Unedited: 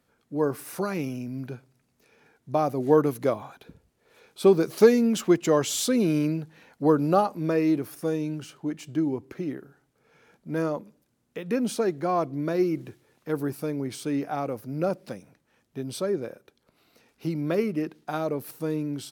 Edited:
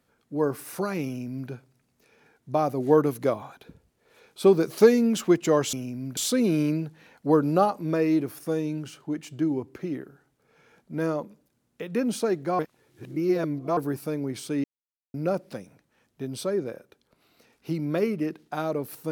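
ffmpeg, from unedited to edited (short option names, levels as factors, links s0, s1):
-filter_complex "[0:a]asplit=7[s0][s1][s2][s3][s4][s5][s6];[s0]atrim=end=5.732[s7];[s1]atrim=start=1.058:end=1.502[s8];[s2]atrim=start=5.728:end=12.152[s9];[s3]atrim=start=12.148:end=13.332,asetpts=PTS-STARTPTS,areverse[s10];[s4]atrim=start=13.328:end=14.2,asetpts=PTS-STARTPTS,afade=t=out:st=0.868:d=0.004:c=hsin[s11];[s5]atrim=start=14.2:end=14.7,asetpts=PTS-STARTPTS,volume=0[s12];[s6]atrim=start=14.7,asetpts=PTS-STARTPTS,afade=t=in:d=0.004:c=hsin[s13];[s7][s8]acrossfade=d=0.004:c1=hsin:c2=hsin[s14];[s14][s9]acrossfade=d=0.004:c1=hsin:c2=hsin[s15];[s15][s10]acrossfade=d=0.004:c1=hsin:c2=hsin[s16];[s11][s12][s13]concat=n=3:v=0:a=1[s17];[s16][s17]acrossfade=d=0.004:c1=hsin:c2=hsin"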